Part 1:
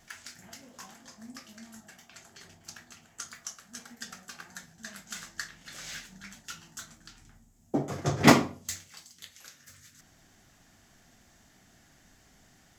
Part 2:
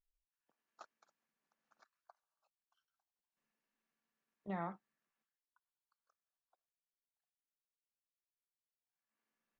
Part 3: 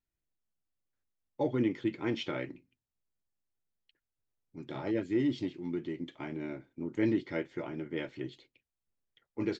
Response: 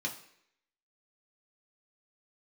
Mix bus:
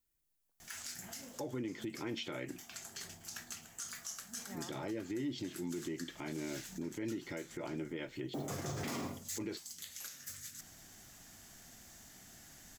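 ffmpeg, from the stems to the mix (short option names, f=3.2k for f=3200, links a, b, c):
-filter_complex "[0:a]acrusher=bits=9:mode=log:mix=0:aa=0.000001,adelay=600,volume=0.5dB[a];[1:a]volume=-9dB[b];[2:a]acompressor=threshold=-33dB:ratio=6,volume=1dB,asplit=2[c][d];[d]apad=whole_len=590278[e];[a][e]sidechaincompress=threshold=-48dB:ratio=8:attack=16:release=186[f];[f][b][c]amix=inputs=3:normalize=0,highshelf=f=4.9k:g=4.5,crystalizer=i=1:c=0,alimiter=level_in=7dB:limit=-24dB:level=0:latency=1:release=72,volume=-7dB"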